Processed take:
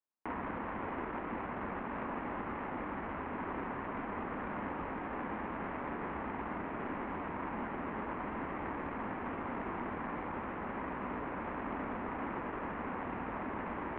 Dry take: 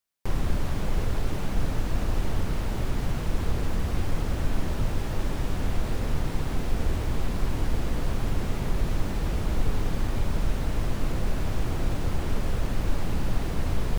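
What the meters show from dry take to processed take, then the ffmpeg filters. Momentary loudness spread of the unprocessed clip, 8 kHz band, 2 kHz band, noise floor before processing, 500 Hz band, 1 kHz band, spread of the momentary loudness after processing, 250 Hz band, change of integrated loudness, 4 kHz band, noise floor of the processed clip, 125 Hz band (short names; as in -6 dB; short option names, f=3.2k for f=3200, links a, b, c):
1 LU, under -35 dB, -2.5 dB, -30 dBFS, -5.5 dB, +1.0 dB, 1 LU, -6.5 dB, -9.0 dB, -19.5 dB, -41 dBFS, -20.0 dB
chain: -af "adynamicsmooth=sensitivity=5:basefreq=940,highpass=f=160:t=q:w=0.5412,highpass=f=160:t=q:w=1.307,lowpass=f=3k:t=q:w=0.5176,lowpass=f=3k:t=q:w=0.7071,lowpass=f=3k:t=q:w=1.932,afreqshift=-76,equalizer=f=125:t=o:w=1:g=-11,equalizer=f=250:t=o:w=1:g=8,equalizer=f=1k:t=o:w=1:g=11,equalizer=f=2k:t=o:w=1:g=9,volume=-8dB"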